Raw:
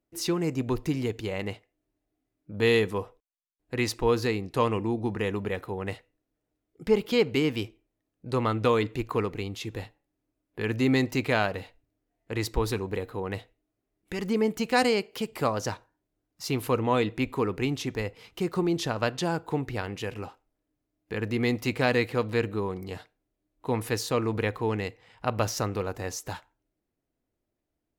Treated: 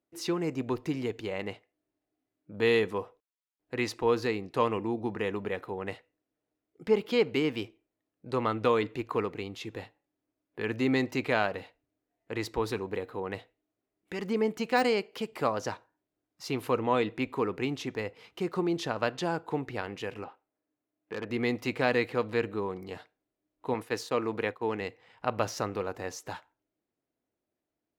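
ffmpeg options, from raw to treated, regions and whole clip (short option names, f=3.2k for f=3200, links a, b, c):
-filter_complex "[0:a]asettb=1/sr,asplit=3[a][b][c];[a]atrim=end=20.244[d];[b]atrim=start=20.24:end=21.3,asetpts=PTS-STARTPTS,afade=t=in:d=0.004:c=qsin,afade=t=out:st=1.056:d=0.004:c=qsin,lowpass=2.9k,lowshelf=f=110:g=-11.5,aeval=exprs='0.0501*(abs(mod(val(0)/0.0501+3,4)-2)-1)':c=same[e];[c]atrim=start=21.296[f];[d][e]acrossfade=d=0.004:c1=hsin:c2=qsin[g];[g][f]acrossfade=d=0.004:c1=qsin:c2=hsin,asettb=1/sr,asplit=3[h][i][j];[h]atrim=end=23.744[k];[i]atrim=start=23.74:end=24.81,asetpts=PTS-STARTPTS,afade=t=in:d=0.004:c=qsin,afade=t=out:st=1.066:d=0.004:c=qsin,agate=range=-33dB:threshold=-32dB:ratio=3:release=100:detection=peak,highpass=40,equalizer=f=65:t=o:w=2.1:g=-7[l];[j]atrim=start=24.806[m];[k][l]acrossfade=d=0.004:c1=hsin:c2=qsin[n];[n][m]acrossfade=d=0.004:c1=qsin:c2=hsin,aemphasis=mode=reproduction:type=cd,deesser=0.65,highpass=f=250:p=1,volume=-1dB"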